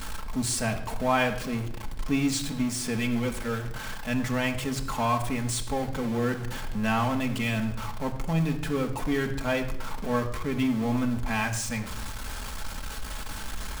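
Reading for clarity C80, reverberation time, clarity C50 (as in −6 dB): 12.5 dB, 0.75 s, 10.5 dB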